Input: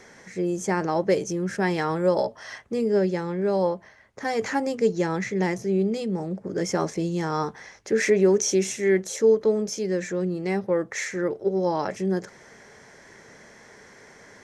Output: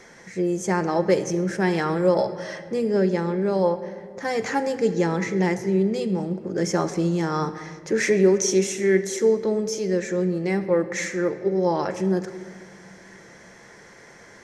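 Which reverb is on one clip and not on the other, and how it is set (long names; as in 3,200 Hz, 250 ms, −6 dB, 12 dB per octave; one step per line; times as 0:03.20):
rectangular room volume 3,400 cubic metres, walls mixed, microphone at 0.8 metres
level +1 dB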